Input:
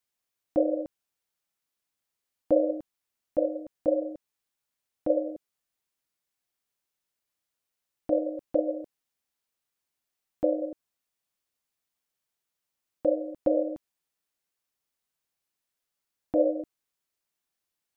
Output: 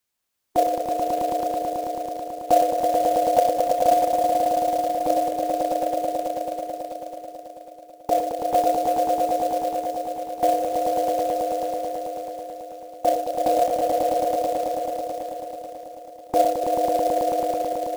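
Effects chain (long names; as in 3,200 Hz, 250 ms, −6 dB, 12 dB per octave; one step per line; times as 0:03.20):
formants moved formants +4 semitones
echo that builds up and dies away 109 ms, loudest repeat 5, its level −4 dB
floating-point word with a short mantissa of 2 bits
level +5 dB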